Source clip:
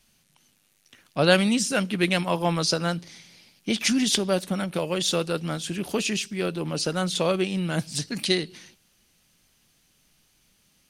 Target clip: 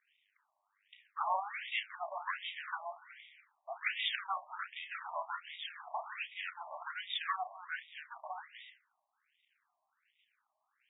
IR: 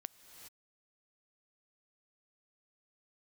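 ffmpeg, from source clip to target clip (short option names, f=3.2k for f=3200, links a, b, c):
-filter_complex "[0:a]adynamicsmooth=sensitivity=7:basefreq=6.9k,aeval=exprs='max(val(0),0)':c=same,asplit=2[a][b];[1:a]atrim=start_sample=2205,afade=t=out:st=0.39:d=0.01,atrim=end_sample=17640,adelay=32[c];[b][c]afir=irnorm=-1:irlink=0,volume=-3.5dB[d];[a][d]amix=inputs=2:normalize=0,afftfilt=real='re*between(b*sr/1024,810*pow(2700/810,0.5+0.5*sin(2*PI*1.3*pts/sr))/1.41,810*pow(2700/810,0.5+0.5*sin(2*PI*1.3*pts/sr))*1.41)':imag='im*between(b*sr/1024,810*pow(2700/810,0.5+0.5*sin(2*PI*1.3*pts/sr))/1.41,810*pow(2700/810,0.5+0.5*sin(2*PI*1.3*pts/sr))*1.41)':win_size=1024:overlap=0.75,volume=1.5dB"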